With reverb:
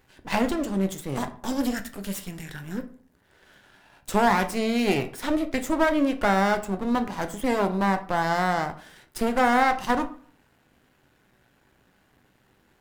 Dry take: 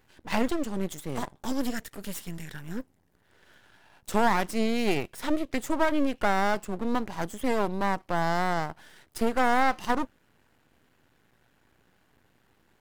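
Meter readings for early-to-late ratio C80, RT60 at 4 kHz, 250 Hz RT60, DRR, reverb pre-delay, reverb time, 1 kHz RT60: 18.5 dB, 0.30 s, 0.50 s, 7.0 dB, 8 ms, 0.50 s, 0.45 s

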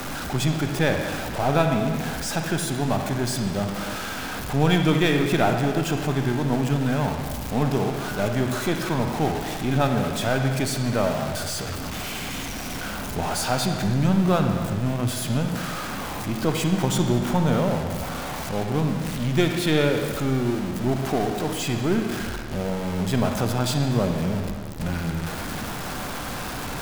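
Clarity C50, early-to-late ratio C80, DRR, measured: 4.5 dB, 6.0 dB, 4.0 dB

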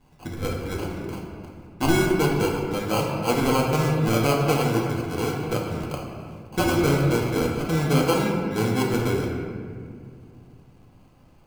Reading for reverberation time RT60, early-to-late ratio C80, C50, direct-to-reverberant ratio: 2.2 s, 3.0 dB, 1.5 dB, −2.0 dB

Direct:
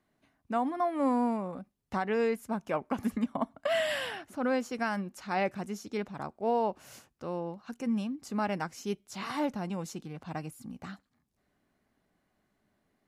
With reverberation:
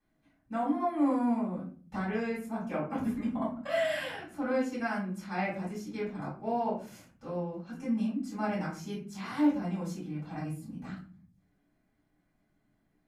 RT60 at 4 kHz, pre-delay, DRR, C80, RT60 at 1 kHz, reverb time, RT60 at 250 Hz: 0.25 s, 4 ms, −8.5 dB, 11.0 dB, 0.35 s, 0.45 s, 0.85 s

